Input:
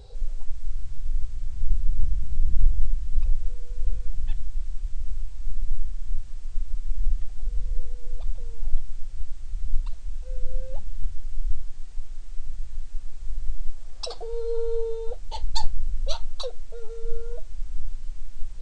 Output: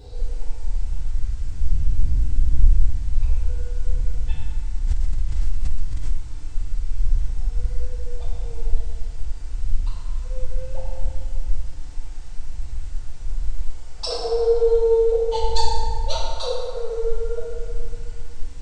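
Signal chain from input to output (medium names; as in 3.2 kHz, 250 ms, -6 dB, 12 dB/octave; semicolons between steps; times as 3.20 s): FDN reverb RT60 2.2 s, low-frequency decay 0.8×, high-frequency decay 0.5×, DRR -8.5 dB; 4.87–6.17 s: swell ahead of each attack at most 45 dB/s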